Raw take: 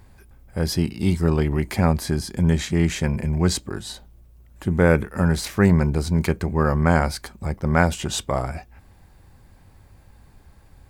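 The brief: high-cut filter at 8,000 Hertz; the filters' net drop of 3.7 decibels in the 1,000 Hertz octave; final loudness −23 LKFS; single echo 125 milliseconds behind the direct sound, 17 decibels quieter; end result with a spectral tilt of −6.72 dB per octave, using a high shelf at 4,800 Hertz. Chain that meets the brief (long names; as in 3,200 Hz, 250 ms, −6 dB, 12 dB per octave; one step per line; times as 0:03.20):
low-pass filter 8,000 Hz
parametric band 1,000 Hz −5 dB
high-shelf EQ 4,800 Hz −4 dB
single-tap delay 125 ms −17 dB
level −0.5 dB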